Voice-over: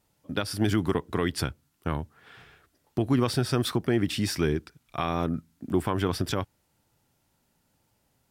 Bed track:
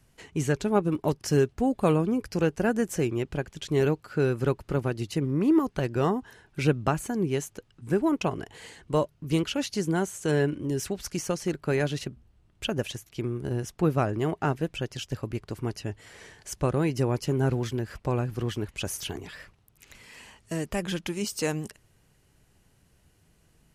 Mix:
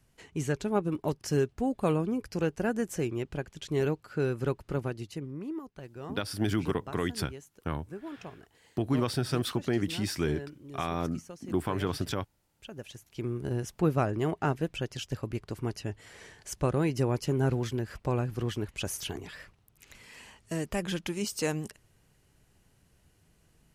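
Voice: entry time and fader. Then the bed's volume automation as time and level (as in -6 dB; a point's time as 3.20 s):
5.80 s, -4.0 dB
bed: 4.83 s -4.5 dB
5.60 s -17 dB
12.64 s -17 dB
13.30 s -2 dB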